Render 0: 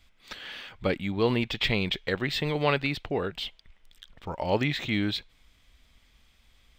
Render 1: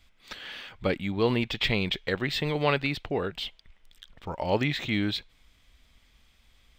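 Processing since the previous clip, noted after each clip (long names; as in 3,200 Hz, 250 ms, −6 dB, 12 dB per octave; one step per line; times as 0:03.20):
no processing that can be heard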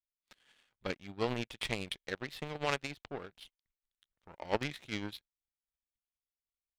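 power curve on the samples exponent 2
amplitude tremolo 9.9 Hz, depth 39%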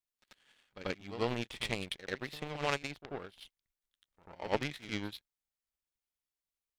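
backwards echo 89 ms −12 dB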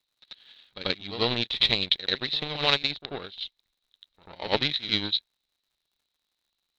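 low-pass with resonance 3,900 Hz, resonance Q 12
surface crackle 120 per second −68 dBFS
level +5.5 dB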